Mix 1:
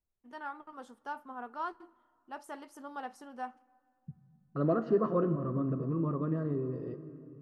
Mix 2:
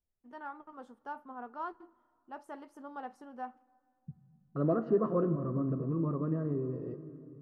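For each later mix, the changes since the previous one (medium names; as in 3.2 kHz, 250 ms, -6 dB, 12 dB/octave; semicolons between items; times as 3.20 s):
master: add treble shelf 2.2 kHz -12 dB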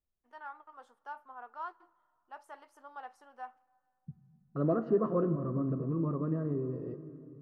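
first voice: add high-pass 760 Hz 12 dB/octave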